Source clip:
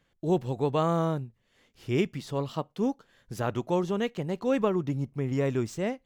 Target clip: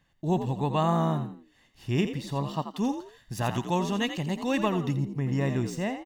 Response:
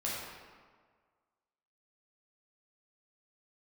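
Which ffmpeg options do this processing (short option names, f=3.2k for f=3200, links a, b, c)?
-filter_complex "[0:a]aecho=1:1:1.1:0.53,asplit=4[a][b][c][d];[b]adelay=85,afreqshift=60,volume=-9.5dB[e];[c]adelay=170,afreqshift=120,volume=-20dB[f];[d]adelay=255,afreqshift=180,volume=-30.4dB[g];[a][e][f][g]amix=inputs=4:normalize=0,asplit=3[h][i][j];[h]afade=t=out:st=2.73:d=0.02[k];[i]adynamicequalizer=threshold=0.00447:dfrequency=2100:dqfactor=0.7:tfrequency=2100:tqfactor=0.7:attack=5:release=100:ratio=0.375:range=3.5:mode=boostabove:tftype=highshelf,afade=t=in:st=2.73:d=0.02,afade=t=out:st=4.95:d=0.02[l];[j]afade=t=in:st=4.95:d=0.02[m];[k][l][m]amix=inputs=3:normalize=0"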